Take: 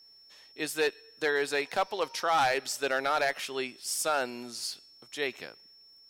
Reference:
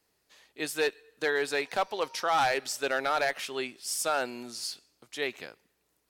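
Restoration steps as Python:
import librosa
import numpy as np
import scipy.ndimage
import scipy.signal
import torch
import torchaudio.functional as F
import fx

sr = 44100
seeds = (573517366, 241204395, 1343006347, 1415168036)

y = fx.fix_declick_ar(x, sr, threshold=6.5)
y = fx.notch(y, sr, hz=5400.0, q=30.0)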